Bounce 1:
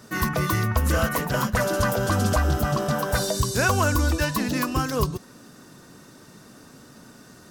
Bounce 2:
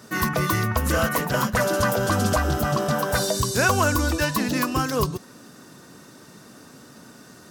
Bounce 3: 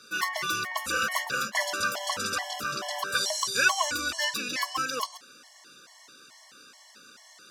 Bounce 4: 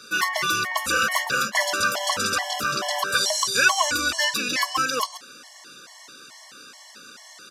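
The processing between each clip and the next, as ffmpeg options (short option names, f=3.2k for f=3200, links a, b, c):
-af "highpass=f=110:p=1,volume=2dB"
-af "bandpass=f=3.5k:t=q:w=0.78:csg=0,afftfilt=real='re*gt(sin(2*PI*2.3*pts/sr)*(1-2*mod(floor(b*sr/1024/570),2)),0)':imag='im*gt(sin(2*PI*2.3*pts/sr)*(1-2*mod(floor(b*sr/1024/570),2)),0)':win_size=1024:overlap=0.75,volume=5dB"
-filter_complex "[0:a]asplit=2[a][b];[b]alimiter=limit=-21.5dB:level=0:latency=1:release=186,volume=-2.5dB[c];[a][c]amix=inputs=2:normalize=0,aresample=32000,aresample=44100,volume=2.5dB"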